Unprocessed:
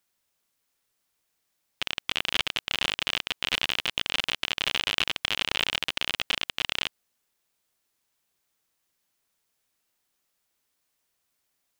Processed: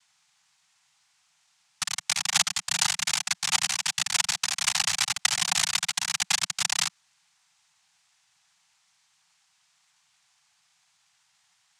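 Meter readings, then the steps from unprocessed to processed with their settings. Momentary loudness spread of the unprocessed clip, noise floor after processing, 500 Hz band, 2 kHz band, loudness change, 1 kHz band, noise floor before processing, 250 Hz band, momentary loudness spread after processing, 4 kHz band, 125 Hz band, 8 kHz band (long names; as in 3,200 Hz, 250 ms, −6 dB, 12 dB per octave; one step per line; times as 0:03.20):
3 LU, −69 dBFS, −9.5 dB, −0.5 dB, +2.5 dB, +3.0 dB, −77 dBFS, −6.0 dB, 4 LU, 0.0 dB, 0.0 dB, +17.0 dB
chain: brickwall limiter −13 dBFS, peak gain reduction 10 dB
cochlear-implant simulation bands 3
Chebyshev band-stop filter 180–770 Hz, order 3
level +7 dB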